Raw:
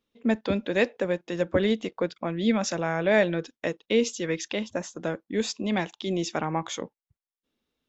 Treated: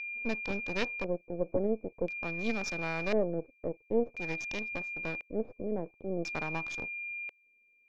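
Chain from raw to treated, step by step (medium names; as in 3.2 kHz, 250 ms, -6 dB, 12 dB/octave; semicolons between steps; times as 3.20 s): local Wiener filter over 15 samples; half-wave rectifier; whistle 2.4 kHz -31 dBFS; LFO low-pass square 0.48 Hz 520–5300 Hz; trim -7 dB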